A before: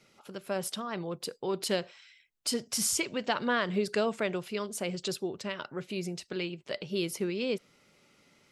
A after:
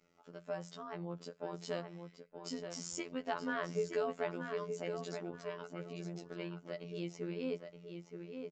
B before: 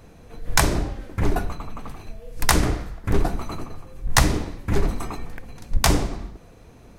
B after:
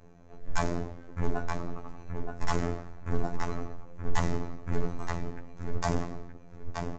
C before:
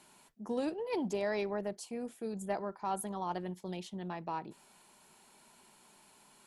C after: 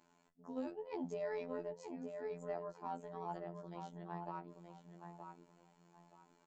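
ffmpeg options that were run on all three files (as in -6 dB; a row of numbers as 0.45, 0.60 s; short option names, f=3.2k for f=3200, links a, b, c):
-filter_complex "[0:a]equalizer=f=3.9k:w=0.7:g=-10,bandreject=f=60:t=h:w=6,bandreject=f=120:t=h:w=6,bandreject=f=180:t=h:w=6,aecho=1:1:7:0.39,asplit=2[a][b];[b]adelay=923,lowpass=f=3.6k:p=1,volume=-6.5dB,asplit=2[c][d];[d]adelay=923,lowpass=f=3.6k:p=1,volume=0.26,asplit=2[e][f];[f]adelay=923,lowpass=f=3.6k:p=1,volume=0.26[g];[a][c][e][g]amix=inputs=4:normalize=0,afftfilt=real='hypot(re,im)*cos(PI*b)':imag='0':win_size=2048:overlap=0.75,aresample=16000,asoftclip=type=hard:threshold=-9dB,aresample=44100,volume=-4dB"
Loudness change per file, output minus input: -9.0, -11.5, -8.0 LU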